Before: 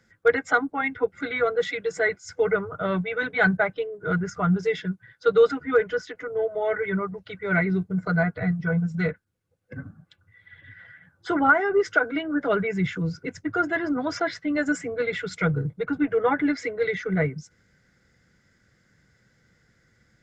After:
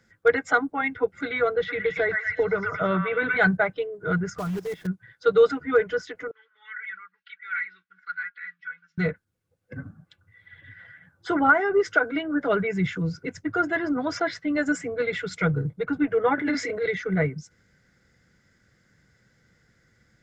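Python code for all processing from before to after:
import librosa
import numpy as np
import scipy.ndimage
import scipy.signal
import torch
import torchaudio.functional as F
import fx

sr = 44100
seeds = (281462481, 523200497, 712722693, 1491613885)

y = fx.chain(x, sr, fx.air_absorb(metres=280.0),
    fx.echo_stepped(ms=115, hz=1500.0, octaves=0.7, feedback_pct=70, wet_db=0),
    fx.band_squash(depth_pct=100), at=(1.56, 3.37))
y = fx.chain(y, sr, fx.block_float(bits=3),
    fx.level_steps(step_db=16),
    fx.tilt_shelf(db=5.0, hz=1500.0), at=(4.38, 4.88))
y = fx.chain(y, sr, fx.ellip_bandpass(low_hz=1500.0, high_hz=6900.0, order=3, stop_db=40),
    fx.air_absorb(metres=270.0),
    fx.comb(ms=3.6, depth=0.46), at=(6.31, 8.98))
y = fx.chain(y, sr, fx.highpass(hz=58.0, slope=12),
    fx.doubler(ms=30.0, db=-5.5),
    fx.transient(attack_db=-8, sustain_db=5), at=(16.35, 16.86))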